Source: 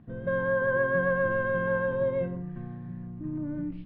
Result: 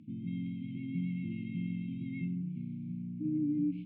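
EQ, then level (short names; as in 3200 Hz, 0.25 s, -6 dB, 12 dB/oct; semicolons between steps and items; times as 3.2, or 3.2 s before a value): BPF 200–2800 Hz; brick-wall FIR band-stop 330–2100 Hz; air absorption 52 m; +4.0 dB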